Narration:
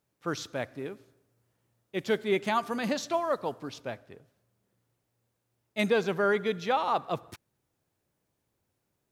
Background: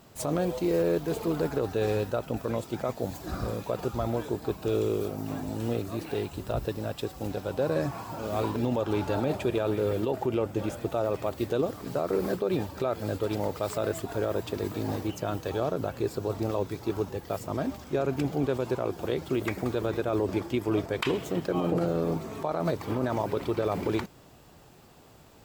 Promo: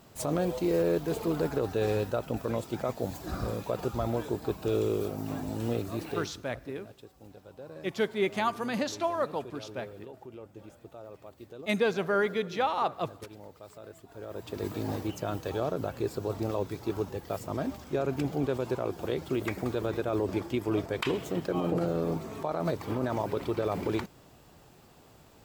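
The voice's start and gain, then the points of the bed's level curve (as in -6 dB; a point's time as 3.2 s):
5.90 s, -1.0 dB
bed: 6.09 s -1 dB
6.51 s -18 dB
14.06 s -18 dB
14.65 s -2 dB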